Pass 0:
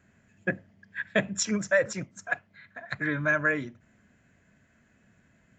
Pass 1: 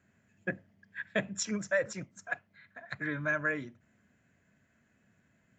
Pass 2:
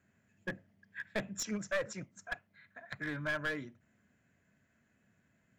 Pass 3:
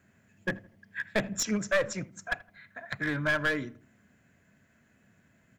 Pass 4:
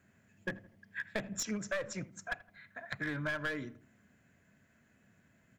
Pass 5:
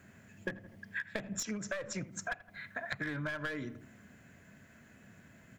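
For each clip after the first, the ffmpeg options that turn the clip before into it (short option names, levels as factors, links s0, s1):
-af "highpass=65,volume=0.501"
-af "aeval=exprs='clip(val(0),-1,0.0299)':c=same,volume=0.708"
-filter_complex "[0:a]asplit=2[s0][s1];[s1]adelay=81,lowpass=f=1400:p=1,volume=0.119,asplit=2[s2][s3];[s3]adelay=81,lowpass=f=1400:p=1,volume=0.43,asplit=2[s4][s5];[s5]adelay=81,lowpass=f=1400:p=1,volume=0.43[s6];[s0][s2][s4][s6]amix=inputs=4:normalize=0,volume=2.51"
-af "acompressor=threshold=0.0251:ratio=2.5,volume=0.708"
-af "acompressor=threshold=0.00562:ratio=6,volume=2.99"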